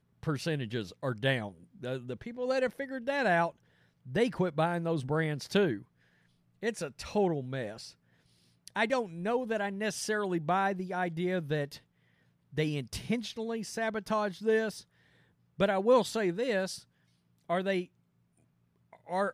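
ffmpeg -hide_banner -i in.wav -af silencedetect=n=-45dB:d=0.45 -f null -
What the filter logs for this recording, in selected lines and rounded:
silence_start: 3.50
silence_end: 4.06 | silence_duration: 0.56
silence_start: 5.82
silence_end: 6.63 | silence_duration: 0.80
silence_start: 7.91
silence_end: 8.68 | silence_duration: 0.77
silence_start: 11.78
silence_end: 12.53 | silence_duration: 0.75
silence_start: 14.81
silence_end: 15.59 | silence_duration: 0.78
silence_start: 16.80
silence_end: 17.49 | silence_duration: 0.69
silence_start: 17.85
silence_end: 18.93 | silence_duration: 1.08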